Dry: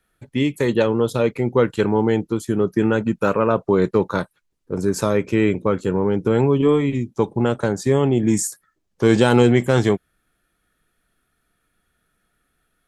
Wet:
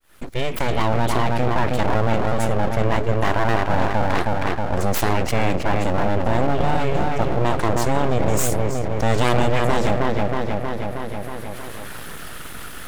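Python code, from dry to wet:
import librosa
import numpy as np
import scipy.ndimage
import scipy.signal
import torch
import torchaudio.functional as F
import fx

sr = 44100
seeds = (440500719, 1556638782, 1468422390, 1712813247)

p1 = fx.fade_in_head(x, sr, length_s=0.96)
p2 = p1 + fx.echo_wet_lowpass(p1, sr, ms=317, feedback_pct=36, hz=2600.0, wet_db=-5, dry=0)
p3 = np.abs(p2)
p4 = fx.env_flatten(p3, sr, amount_pct=70)
y = p4 * librosa.db_to_amplitude(-4.5)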